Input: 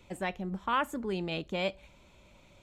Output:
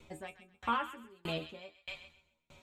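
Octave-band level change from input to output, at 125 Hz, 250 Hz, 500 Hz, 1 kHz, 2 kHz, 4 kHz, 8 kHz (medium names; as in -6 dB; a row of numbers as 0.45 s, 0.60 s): -8.0 dB, -9.0 dB, -9.5 dB, -3.5 dB, -6.0 dB, -4.0 dB, -7.5 dB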